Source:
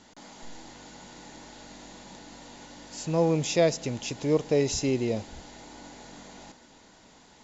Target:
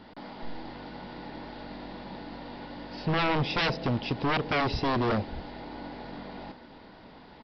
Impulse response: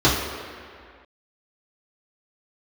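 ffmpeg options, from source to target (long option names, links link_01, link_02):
-af "highshelf=frequency=2800:gain=-11,aresample=11025,aeval=exprs='0.0398*(abs(mod(val(0)/0.0398+3,4)-2)-1)':channel_layout=same,aresample=44100,volume=7dB"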